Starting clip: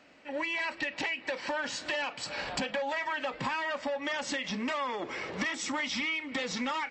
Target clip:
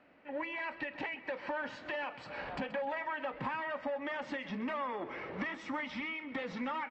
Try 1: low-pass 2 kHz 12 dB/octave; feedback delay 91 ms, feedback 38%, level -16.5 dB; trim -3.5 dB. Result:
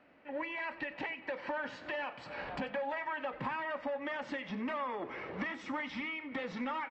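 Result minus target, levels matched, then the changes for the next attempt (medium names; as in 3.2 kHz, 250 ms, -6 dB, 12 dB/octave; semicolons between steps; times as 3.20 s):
echo 39 ms early
change: feedback delay 130 ms, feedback 38%, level -16.5 dB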